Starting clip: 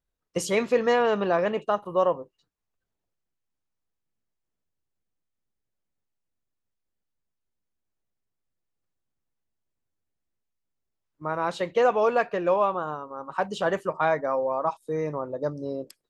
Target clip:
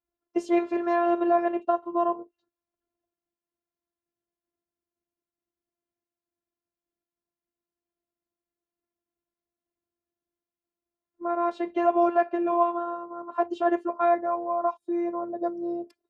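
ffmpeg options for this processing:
-af "afftfilt=real='hypot(re,im)*cos(PI*b)':imag='0':win_size=512:overlap=0.75,adynamicequalizer=threshold=0.00891:dfrequency=440:dqfactor=1.3:tfrequency=440:tqfactor=1.3:attack=5:release=100:ratio=0.375:range=2:mode=cutabove:tftype=bell,bandpass=f=400:t=q:w=0.68:csg=0,volume=2.51"

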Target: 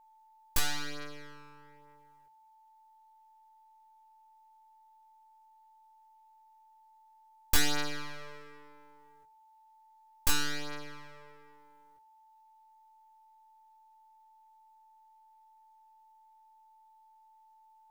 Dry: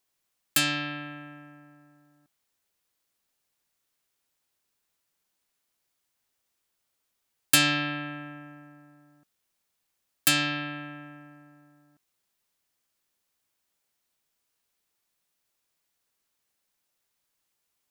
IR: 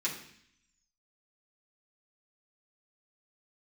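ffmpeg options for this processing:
-filter_complex "[0:a]aeval=exprs='abs(val(0))':c=same,flanger=delay=17.5:depth=3.7:speed=0.34,asplit=2[s0][s1];[1:a]atrim=start_sample=2205,lowpass=f=5600:w=0.5412,lowpass=f=5600:w=1.3066[s2];[s1][s2]afir=irnorm=-1:irlink=0,volume=0.1[s3];[s0][s3]amix=inputs=2:normalize=0,aeval=exprs='val(0)+0.00112*sin(2*PI*880*n/s)':c=same"

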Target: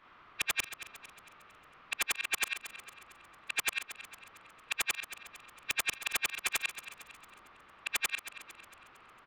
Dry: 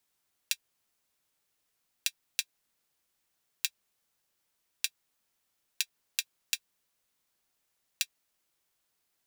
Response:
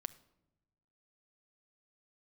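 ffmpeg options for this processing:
-filter_complex "[0:a]afftfilt=real='re':imag='-im':win_size=8192:overlap=0.75,lowpass=f=2700:w=0.5412,lowpass=f=2700:w=1.3066,equalizer=f=1200:t=o:w=0.49:g=11.5,asplit=2[s0][s1];[s1]acompressor=threshold=0.00126:ratio=6,volume=1.12[s2];[s0][s2]amix=inputs=2:normalize=0,aeval=exprs='0.0631*sin(PI/2*8.91*val(0)/0.0631)':c=same,aecho=1:1:227|454|681|908|1135:0.224|0.107|0.0516|0.0248|0.0119"

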